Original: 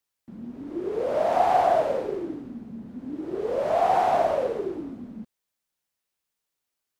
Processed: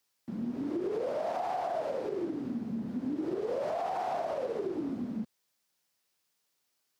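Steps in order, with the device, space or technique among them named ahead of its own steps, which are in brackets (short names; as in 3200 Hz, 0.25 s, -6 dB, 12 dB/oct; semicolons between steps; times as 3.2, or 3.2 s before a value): broadcast voice chain (HPF 100 Hz 12 dB/oct; de-esser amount 85%; compressor 4:1, threshold -35 dBFS, peak gain reduction 15.5 dB; bell 5000 Hz +4 dB 0.64 oct; limiter -30 dBFS, peak gain reduction 5 dB); gain +4.5 dB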